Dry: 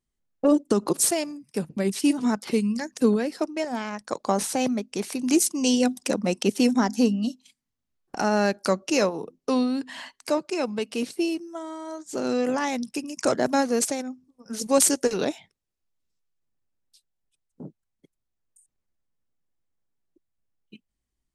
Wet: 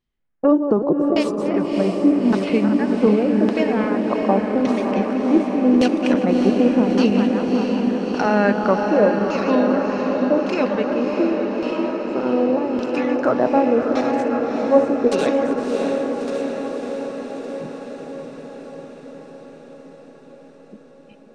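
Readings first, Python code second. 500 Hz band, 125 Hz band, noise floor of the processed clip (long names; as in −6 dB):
+8.5 dB, +7.5 dB, −45 dBFS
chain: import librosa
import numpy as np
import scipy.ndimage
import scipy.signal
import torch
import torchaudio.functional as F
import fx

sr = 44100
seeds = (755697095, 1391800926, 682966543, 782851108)

y = fx.reverse_delay_fb(x, sr, ms=192, feedback_pct=82, wet_db=-9)
y = fx.filter_lfo_lowpass(y, sr, shape='saw_down', hz=0.86, low_hz=390.0, high_hz=3800.0, q=1.3)
y = fx.echo_diffused(y, sr, ms=627, feedback_pct=68, wet_db=-5)
y = y * librosa.db_to_amplitude(3.5)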